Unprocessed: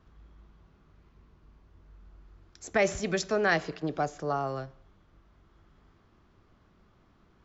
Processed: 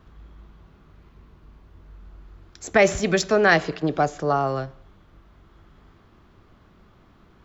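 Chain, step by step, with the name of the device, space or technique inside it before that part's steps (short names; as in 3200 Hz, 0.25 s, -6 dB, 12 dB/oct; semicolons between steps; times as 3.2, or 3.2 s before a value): exciter from parts (in parallel at -10.5 dB: HPF 4000 Hz 24 dB/oct + soft clip -37.5 dBFS, distortion -8 dB + HPF 3900 Hz 12 dB/oct); on the sum: gain +8.5 dB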